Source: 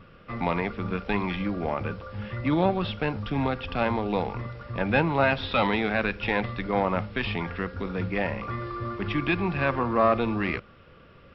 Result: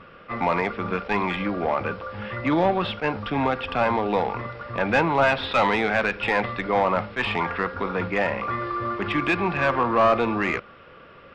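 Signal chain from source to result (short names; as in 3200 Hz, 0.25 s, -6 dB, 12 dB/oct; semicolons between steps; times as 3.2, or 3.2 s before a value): 7.05–8.08 dynamic EQ 1000 Hz, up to +5 dB, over -49 dBFS, Q 1.6; overdrive pedal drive 16 dB, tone 1800 Hz, clips at -8.5 dBFS; attack slew limiter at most 400 dB/s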